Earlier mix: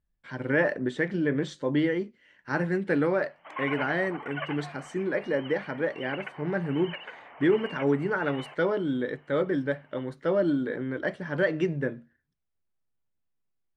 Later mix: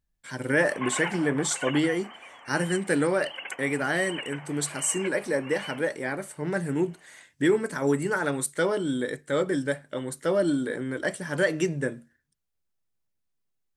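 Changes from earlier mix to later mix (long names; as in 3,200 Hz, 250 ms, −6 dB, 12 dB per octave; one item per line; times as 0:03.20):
background: entry −2.75 s
master: remove high-frequency loss of the air 280 metres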